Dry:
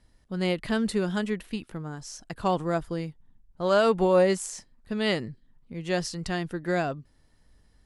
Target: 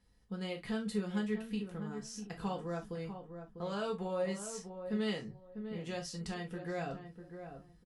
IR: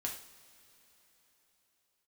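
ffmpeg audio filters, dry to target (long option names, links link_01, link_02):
-filter_complex "[0:a]acompressor=threshold=-32dB:ratio=2,asplit=2[link_01][link_02];[link_02]adelay=648,lowpass=frequency=1100:poles=1,volume=-8dB,asplit=2[link_03][link_04];[link_04]adelay=648,lowpass=frequency=1100:poles=1,volume=0.24,asplit=2[link_05][link_06];[link_06]adelay=648,lowpass=frequency=1100:poles=1,volume=0.24[link_07];[link_01][link_03][link_05][link_07]amix=inputs=4:normalize=0[link_08];[1:a]atrim=start_sample=2205,afade=type=out:start_time=0.18:duration=0.01,atrim=end_sample=8379,asetrate=79380,aresample=44100[link_09];[link_08][link_09]afir=irnorm=-1:irlink=0,volume=-1.5dB"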